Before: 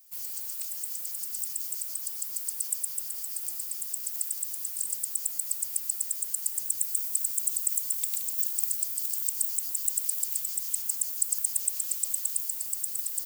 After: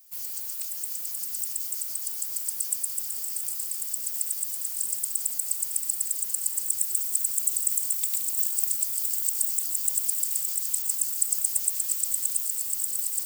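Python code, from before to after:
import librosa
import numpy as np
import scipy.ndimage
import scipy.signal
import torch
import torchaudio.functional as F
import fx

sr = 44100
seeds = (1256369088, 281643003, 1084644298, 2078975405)

y = fx.echo_swing(x, sr, ms=901, ratio=3, feedback_pct=72, wet_db=-11.0)
y = y * 10.0 ** (2.0 / 20.0)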